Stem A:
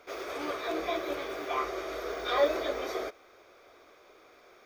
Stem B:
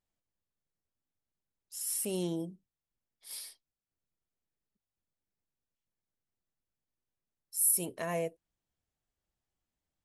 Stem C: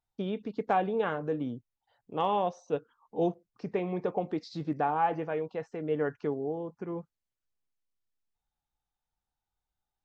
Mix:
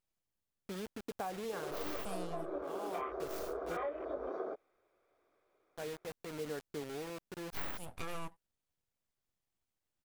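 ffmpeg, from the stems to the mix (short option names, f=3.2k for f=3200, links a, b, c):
-filter_complex "[0:a]highpass=f=45:w=0.5412,highpass=f=45:w=1.3066,afwtdn=0.0158,lowpass=f=1.4k:p=1,adelay=1450,volume=-1dB[a];[1:a]acontrast=85,aeval=exprs='abs(val(0))':c=same,volume=-7dB,asplit=2[b][c];[2:a]acrusher=bits=5:mix=0:aa=0.000001,adelay=500,volume=-10dB,asplit=3[d][e][f];[d]atrim=end=3.77,asetpts=PTS-STARTPTS,afade=t=out:st=3.766:d=0.004:c=hsin[g];[e]atrim=start=3.77:end=5.75,asetpts=PTS-STARTPTS,volume=0[h];[f]atrim=start=5.75,asetpts=PTS-STARTPTS,afade=t=in:d=0.004:c=hsin[i];[g][h][i]concat=n=3:v=0:a=1[j];[c]apad=whole_len=464967[k];[j][k]sidechaincompress=threshold=-49dB:ratio=8:attack=16:release=561[l];[a][b][l]amix=inputs=3:normalize=0,acompressor=threshold=-35dB:ratio=16"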